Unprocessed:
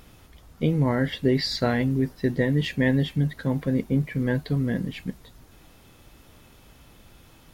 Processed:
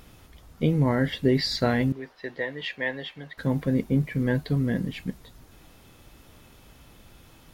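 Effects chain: 1.92–3.38 three-band isolator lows -22 dB, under 500 Hz, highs -18 dB, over 4600 Hz

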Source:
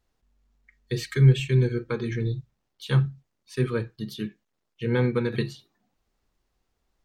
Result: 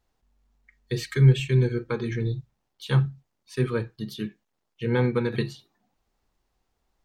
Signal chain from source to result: bell 840 Hz +4 dB 0.62 oct

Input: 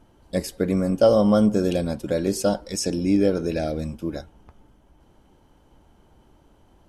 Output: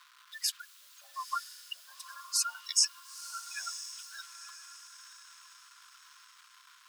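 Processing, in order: spectral gate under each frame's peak -20 dB strong; in parallel at +2 dB: limiter -17 dBFS, peak gain reduction 9 dB; on the sum: requantised 8-bit, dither none; rippled Chebyshev high-pass 1000 Hz, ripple 6 dB; on a send: diffused feedback echo 0.946 s, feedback 41%, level -11.5 dB

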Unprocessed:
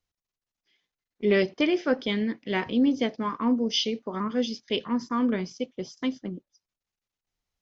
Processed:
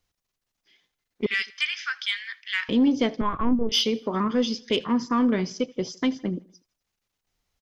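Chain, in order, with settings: 1.26–2.69 steep high-pass 1400 Hz 36 dB/oct; in parallel at +2 dB: compressor, threshold -32 dBFS, peak gain reduction 13 dB; on the sum: soft clip -12.5 dBFS, distortion -23 dB; on a send: feedback echo 80 ms, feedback 49%, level -23 dB; 3.21–3.72 on the sum: LPC vocoder at 8 kHz pitch kept; gain +1 dB

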